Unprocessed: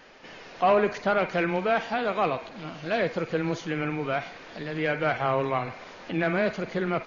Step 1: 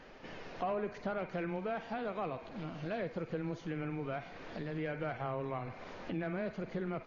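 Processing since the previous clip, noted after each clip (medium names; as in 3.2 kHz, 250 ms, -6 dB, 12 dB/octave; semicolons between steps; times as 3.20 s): tilt EQ -2 dB/octave; compression 2.5:1, threshold -36 dBFS, peak gain reduction 13.5 dB; trim -3.5 dB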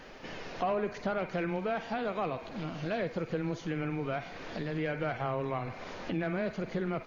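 treble shelf 4.2 kHz +7 dB; trim +4.5 dB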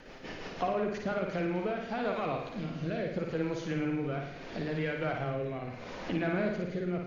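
rotary cabinet horn 6 Hz, later 0.75 Hz, at 1.04 s; flutter echo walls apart 9.6 m, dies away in 0.69 s; trim +1 dB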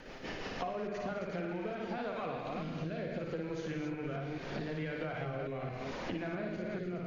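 chunks repeated in reverse 219 ms, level -5 dB; compression, threshold -36 dBFS, peak gain reduction 10.5 dB; trim +1 dB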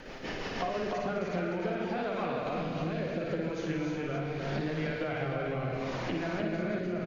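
delay 304 ms -4 dB; trim +4 dB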